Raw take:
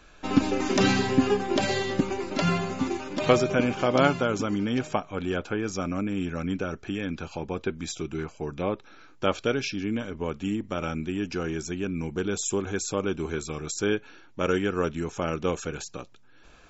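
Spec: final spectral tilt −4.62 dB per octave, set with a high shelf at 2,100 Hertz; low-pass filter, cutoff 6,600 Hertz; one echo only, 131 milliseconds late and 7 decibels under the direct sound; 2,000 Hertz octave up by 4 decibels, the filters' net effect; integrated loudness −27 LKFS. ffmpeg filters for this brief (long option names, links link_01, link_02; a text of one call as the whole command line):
ffmpeg -i in.wav -af "lowpass=6600,equalizer=frequency=2000:width_type=o:gain=9,highshelf=frequency=2100:gain=-6,aecho=1:1:131:0.447,volume=-0.5dB" out.wav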